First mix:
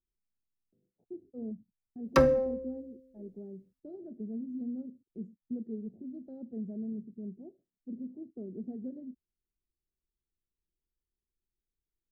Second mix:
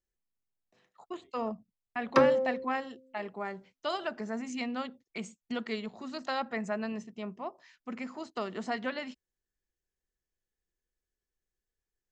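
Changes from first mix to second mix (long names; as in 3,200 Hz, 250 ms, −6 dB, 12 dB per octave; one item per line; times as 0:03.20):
speech: remove inverse Chebyshev low-pass filter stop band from 980 Hz, stop band 50 dB
background: add band-pass filter 200–5,500 Hz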